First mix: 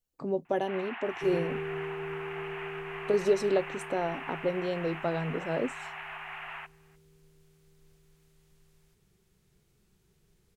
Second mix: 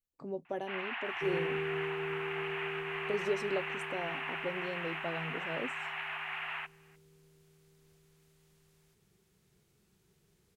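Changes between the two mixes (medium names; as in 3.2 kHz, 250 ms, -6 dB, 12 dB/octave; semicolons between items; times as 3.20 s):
speech -8.5 dB; first sound: add tilt EQ +3 dB/octave; second sound: add high-pass 100 Hz 6 dB/octave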